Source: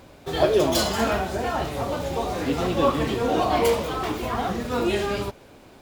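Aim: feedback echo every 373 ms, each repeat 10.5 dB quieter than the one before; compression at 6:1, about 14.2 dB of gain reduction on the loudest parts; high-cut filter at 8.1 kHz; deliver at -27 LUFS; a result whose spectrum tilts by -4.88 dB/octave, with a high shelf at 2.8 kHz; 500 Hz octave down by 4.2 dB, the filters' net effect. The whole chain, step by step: low-pass 8.1 kHz; peaking EQ 500 Hz -5 dB; treble shelf 2.8 kHz -8 dB; compression 6:1, threshold -34 dBFS; feedback delay 373 ms, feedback 30%, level -10.5 dB; trim +10 dB

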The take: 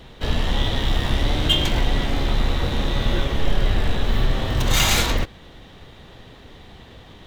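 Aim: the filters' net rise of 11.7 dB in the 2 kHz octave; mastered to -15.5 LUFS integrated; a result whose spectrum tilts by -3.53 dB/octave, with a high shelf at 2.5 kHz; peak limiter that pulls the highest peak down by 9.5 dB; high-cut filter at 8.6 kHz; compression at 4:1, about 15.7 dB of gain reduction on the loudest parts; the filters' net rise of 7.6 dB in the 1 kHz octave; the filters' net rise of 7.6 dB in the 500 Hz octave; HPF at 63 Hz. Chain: high-pass 63 Hz; low-pass 8.6 kHz; peaking EQ 500 Hz +7.5 dB; peaking EQ 1 kHz +3.5 dB; peaking EQ 2 kHz +9 dB; treble shelf 2.5 kHz +8 dB; compression 4:1, threshold -27 dBFS; trim +16.5 dB; peak limiter -6.5 dBFS

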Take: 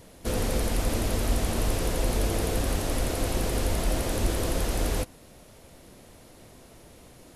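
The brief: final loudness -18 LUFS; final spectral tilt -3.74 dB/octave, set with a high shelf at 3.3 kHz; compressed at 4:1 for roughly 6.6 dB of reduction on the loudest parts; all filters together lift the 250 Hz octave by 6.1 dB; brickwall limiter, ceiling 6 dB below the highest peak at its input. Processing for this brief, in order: peaking EQ 250 Hz +7.5 dB; treble shelf 3.3 kHz +9 dB; compression 4:1, threshold -27 dBFS; trim +14.5 dB; peak limiter -7.5 dBFS

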